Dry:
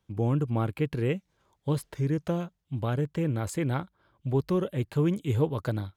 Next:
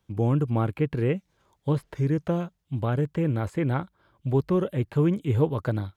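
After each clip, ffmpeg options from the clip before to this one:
ffmpeg -i in.wav -filter_complex "[0:a]acrossover=split=2700[link_01][link_02];[link_02]acompressor=threshold=-56dB:ratio=4:attack=1:release=60[link_03];[link_01][link_03]amix=inputs=2:normalize=0,volume=3dB" out.wav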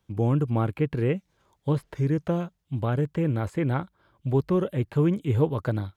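ffmpeg -i in.wav -af anull out.wav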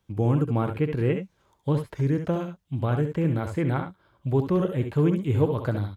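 ffmpeg -i in.wav -af "aecho=1:1:67|78:0.398|0.224" out.wav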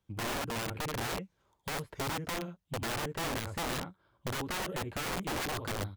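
ffmpeg -i in.wav -af "aeval=exprs='(mod(13.3*val(0)+1,2)-1)/13.3':channel_layout=same,volume=-7.5dB" out.wav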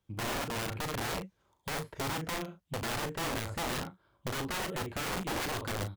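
ffmpeg -i in.wav -filter_complex "[0:a]asplit=2[link_01][link_02];[link_02]adelay=37,volume=-9dB[link_03];[link_01][link_03]amix=inputs=2:normalize=0" out.wav

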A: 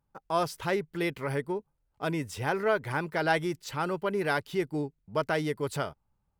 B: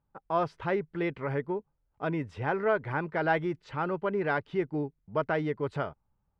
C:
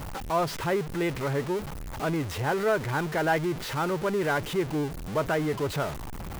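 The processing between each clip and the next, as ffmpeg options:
ffmpeg -i in.wav -af "lowpass=2100" out.wav
ffmpeg -i in.wav -af "aeval=exprs='val(0)+0.5*0.0316*sgn(val(0))':channel_layout=same" out.wav

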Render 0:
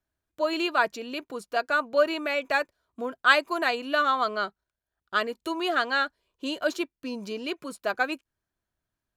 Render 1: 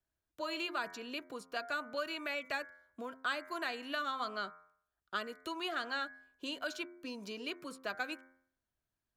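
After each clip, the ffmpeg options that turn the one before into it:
ffmpeg -i in.wav -filter_complex "[0:a]bandreject=frequency=87.69:width_type=h:width=4,bandreject=frequency=175.38:width_type=h:width=4,bandreject=frequency=263.07:width_type=h:width=4,bandreject=frequency=350.76:width_type=h:width=4,bandreject=frequency=438.45:width_type=h:width=4,bandreject=frequency=526.14:width_type=h:width=4,bandreject=frequency=613.83:width_type=h:width=4,bandreject=frequency=701.52:width_type=h:width=4,bandreject=frequency=789.21:width_type=h:width=4,bandreject=frequency=876.9:width_type=h:width=4,bandreject=frequency=964.59:width_type=h:width=4,bandreject=frequency=1052.28:width_type=h:width=4,bandreject=frequency=1139.97:width_type=h:width=4,bandreject=frequency=1227.66:width_type=h:width=4,bandreject=frequency=1315.35:width_type=h:width=4,bandreject=frequency=1403.04:width_type=h:width=4,bandreject=frequency=1490.73:width_type=h:width=4,bandreject=frequency=1578.42:width_type=h:width=4,bandreject=frequency=1666.11:width_type=h:width=4,bandreject=frequency=1753.8:width_type=h:width=4,bandreject=frequency=1841.49:width_type=h:width=4,bandreject=frequency=1929.18:width_type=h:width=4,bandreject=frequency=2016.87:width_type=h:width=4,bandreject=frequency=2104.56:width_type=h:width=4,bandreject=frequency=2192.25:width_type=h:width=4,bandreject=frequency=2279.94:width_type=h:width=4,acrossover=split=260|960|3100|6800[link_01][link_02][link_03][link_04][link_05];[link_01]acompressor=threshold=-46dB:ratio=4[link_06];[link_02]acompressor=threshold=-41dB:ratio=4[link_07];[link_03]acompressor=threshold=-33dB:ratio=4[link_08];[link_04]acompressor=threshold=-42dB:ratio=4[link_09];[link_05]acompressor=threshold=-55dB:ratio=4[link_10];[link_06][link_07][link_08][link_09][link_10]amix=inputs=5:normalize=0,volume=-5dB" out.wav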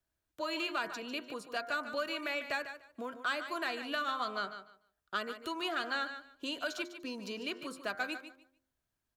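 ffmpeg -i in.wav -filter_complex "[0:a]asoftclip=type=tanh:threshold=-24dB,asplit=2[link_01][link_02];[link_02]aecho=0:1:148|296|444:0.282|0.0535|0.0102[link_03];[link_01][link_03]amix=inputs=2:normalize=0,volume=2.5dB" out.wav

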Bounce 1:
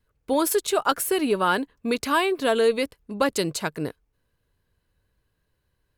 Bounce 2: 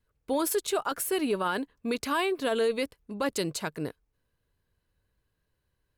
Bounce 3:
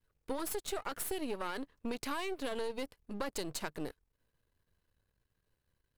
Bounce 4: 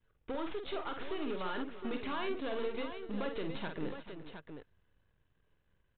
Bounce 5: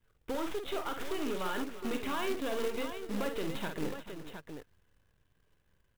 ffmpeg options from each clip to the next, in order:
ffmpeg -i in.wav -af "alimiter=limit=-14.5dB:level=0:latency=1:release=14,volume=-4.5dB" out.wav
ffmpeg -i in.wav -af "aeval=exprs='if(lt(val(0),0),0.251*val(0),val(0))':channel_layout=same,acompressor=threshold=-33dB:ratio=6" out.wav
ffmpeg -i in.wav -af "aresample=8000,asoftclip=type=tanh:threshold=-35.5dB,aresample=44100,aecho=1:1:49|344|439|715:0.473|0.15|0.2|0.376,volume=3.5dB" out.wav
ffmpeg -i in.wav -af "acrusher=bits=3:mode=log:mix=0:aa=0.000001,volume=2.5dB" out.wav

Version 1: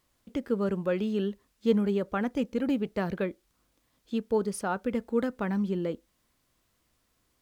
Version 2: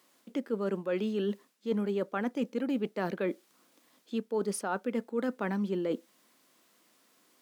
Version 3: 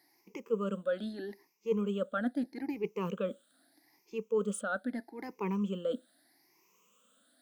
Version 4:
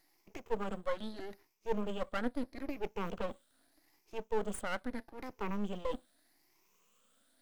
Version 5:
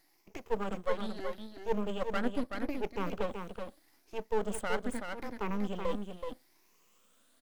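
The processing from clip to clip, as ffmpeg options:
ffmpeg -i in.wav -af "highpass=frequency=210:width=0.5412,highpass=frequency=210:width=1.3066,areverse,acompressor=threshold=-36dB:ratio=6,areverse,volume=7.5dB" out.wav
ffmpeg -i in.wav -af "afftfilt=real='re*pow(10,22/40*sin(2*PI*(0.77*log(max(b,1)*sr/1024/100)/log(2)-(0.79)*(pts-256)/sr)))':imag='im*pow(10,22/40*sin(2*PI*(0.77*log(max(b,1)*sr/1024/100)/log(2)-(0.79)*(pts-256)/sr)))':win_size=1024:overlap=0.75,volume=-7.5dB" out.wav
ffmpeg -i in.wav -af "aeval=exprs='max(val(0),0)':channel_layout=same,volume=1dB" out.wav
ffmpeg -i in.wav -af "aecho=1:1:377:0.501,volume=2.5dB" out.wav

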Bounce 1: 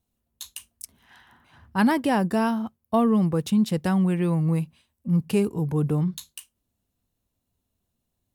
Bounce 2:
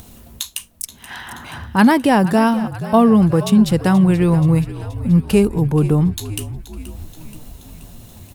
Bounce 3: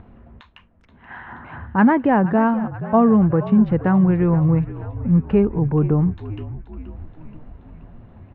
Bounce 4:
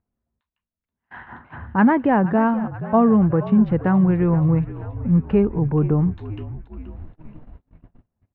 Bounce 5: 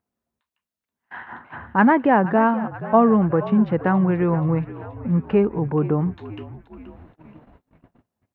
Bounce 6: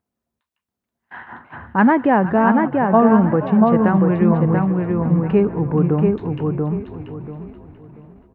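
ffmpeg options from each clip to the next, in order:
ffmpeg -i in.wav -filter_complex "[0:a]acompressor=mode=upward:threshold=-28dB:ratio=2.5,asplit=8[link_01][link_02][link_03][link_04][link_05][link_06][link_07][link_08];[link_02]adelay=478,afreqshift=-48,volume=-15dB[link_09];[link_03]adelay=956,afreqshift=-96,volume=-19dB[link_10];[link_04]adelay=1434,afreqshift=-144,volume=-23dB[link_11];[link_05]adelay=1912,afreqshift=-192,volume=-27dB[link_12];[link_06]adelay=2390,afreqshift=-240,volume=-31.1dB[link_13];[link_07]adelay=2868,afreqshift=-288,volume=-35.1dB[link_14];[link_08]adelay=3346,afreqshift=-336,volume=-39.1dB[link_15];[link_01][link_09][link_10][link_11][link_12][link_13][link_14][link_15]amix=inputs=8:normalize=0,volume=8.5dB" out.wav
ffmpeg -i in.wav -af "lowpass=frequency=1900:width=0.5412,lowpass=frequency=1900:width=1.3066,volume=-2.5dB" out.wav
ffmpeg -i in.wav -af "agate=range=-34dB:threshold=-37dB:ratio=16:detection=peak,volume=-1dB" out.wav
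ffmpeg -i in.wav -af "highpass=frequency=340:poles=1,volume=3.5dB" out.wav
ffmpeg -i in.wav -filter_complex "[0:a]lowshelf=frequency=430:gain=3,asplit=2[link_01][link_02];[link_02]adelay=686,lowpass=frequency=2600:poles=1,volume=-3dB,asplit=2[link_03][link_04];[link_04]adelay=686,lowpass=frequency=2600:poles=1,volume=0.27,asplit=2[link_05][link_06];[link_06]adelay=686,lowpass=frequency=2600:poles=1,volume=0.27,asplit=2[link_07][link_08];[link_08]adelay=686,lowpass=frequency=2600:poles=1,volume=0.27[link_09];[link_03][link_05][link_07][link_09]amix=inputs=4:normalize=0[link_10];[link_01][link_10]amix=inputs=2:normalize=0" out.wav

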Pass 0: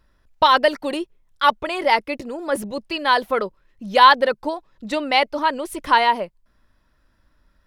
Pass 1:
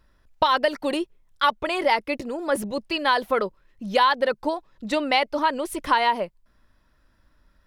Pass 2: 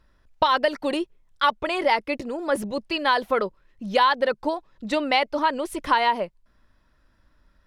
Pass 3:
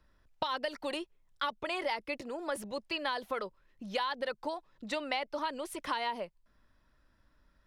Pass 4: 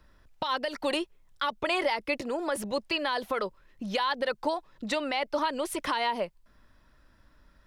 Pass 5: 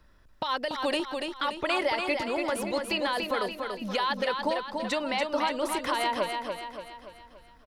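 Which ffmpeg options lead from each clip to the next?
ffmpeg -i in.wav -af "acompressor=threshold=-16dB:ratio=6" out.wav
ffmpeg -i in.wav -af "highshelf=frequency=12000:gain=-10" out.wav
ffmpeg -i in.wav -filter_complex "[0:a]acrossover=split=93|540|2900[link_01][link_02][link_03][link_04];[link_01]acompressor=threshold=-58dB:ratio=4[link_05];[link_02]acompressor=threshold=-38dB:ratio=4[link_06];[link_03]acompressor=threshold=-29dB:ratio=4[link_07];[link_04]acompressor=threshold=-35dB:ratio=4[link_08];[link_05][link_06][link_07][link_08]amix=inputs=4:normalize=0,volume=-5.5dB" out.wav
ffmpeg -i in.wav -af "alimiter=level_in=2dB:limit=-24dB:level=0:latency=1:release=129,volume=-2dB,volume=8dB" out.wav
ffmpeg -i in.wav -af "aecho=1:1:287|574|861|1148|1435|1722:0.562|0.276|0.135|0.0662|0.0324|0.0159" out.wav

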